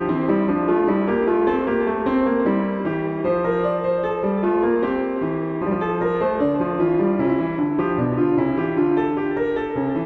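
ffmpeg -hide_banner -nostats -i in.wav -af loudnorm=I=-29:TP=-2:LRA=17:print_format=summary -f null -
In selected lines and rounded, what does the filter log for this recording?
Input Integrated:    -20.9 LUFS
Input True Peak:      -7.2 dBTP
Input LRA:             1.2 LU
Input Threshold:     -30.9 LUFS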